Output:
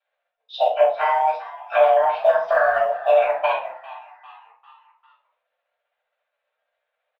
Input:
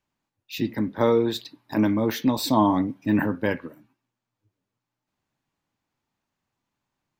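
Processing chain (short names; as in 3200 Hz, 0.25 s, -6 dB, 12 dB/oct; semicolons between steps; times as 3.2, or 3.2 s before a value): delay-line pitch shifter +4.5 st; limiter -17 dBFS, peak gain reduction 8 dB; mistuned SSB +320 Hz 200–3200 Hz; short-mantissa float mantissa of 6-bit; transient shaper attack +6 dB, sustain -9 dB; frequency-shifting echo 0.399 s, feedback 50%, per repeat +78 Hz, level -18 dB; shoebox room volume 240 m³, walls furnished, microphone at 6.2 m; gain -4.5 dB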